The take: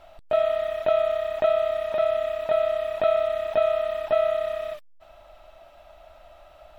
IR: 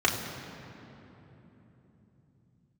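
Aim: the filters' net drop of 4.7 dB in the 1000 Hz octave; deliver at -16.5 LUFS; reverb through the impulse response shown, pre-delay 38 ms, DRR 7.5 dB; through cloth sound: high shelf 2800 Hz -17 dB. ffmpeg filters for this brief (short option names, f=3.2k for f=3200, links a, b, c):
-filter_complex "[0:a]equalizer=f=1k:t=o:g=-5.5,asplit=2[a][b];[1:a]atrim=start_sample=2205,adelay=38[c];[b][c]afir=irnorm=-1:irlink=0,volume=-21.5dB[d];[a][d]amix=inputs=2:normalize=0,highshelf=f=2.8k:g=-17,volume=11dB"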